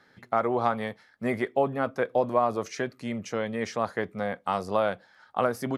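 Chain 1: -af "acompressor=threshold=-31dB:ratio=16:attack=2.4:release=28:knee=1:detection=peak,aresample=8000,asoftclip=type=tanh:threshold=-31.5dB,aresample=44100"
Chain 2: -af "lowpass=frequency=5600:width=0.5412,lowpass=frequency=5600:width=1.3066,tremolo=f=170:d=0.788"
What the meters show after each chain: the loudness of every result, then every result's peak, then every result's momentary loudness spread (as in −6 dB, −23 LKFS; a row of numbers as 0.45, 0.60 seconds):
−40.0, −32.5 LKFS; −29.5, −10.0 dBFS; 4, 8 LU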